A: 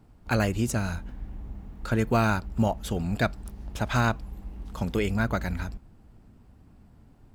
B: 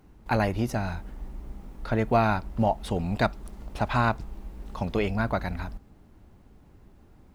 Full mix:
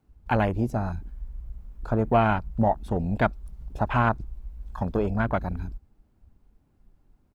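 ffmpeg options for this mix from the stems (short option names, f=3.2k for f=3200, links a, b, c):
-filter_complex "[0:a]volume=-15dB[a];[1:a]highshelf=f=11k:g=6.5,bandreject=f=1.9k:w=19,afwtdn=0.0251,adelay=1.6,volume=1.5dB,asplit=2[b][c];[c]apad=whole_len=323779[d];[a][d]sidechaincompress=threshold=-28dB:ratio=8:attack=16:release=703[e];[e][b]amix=inputs=2:normalize=0"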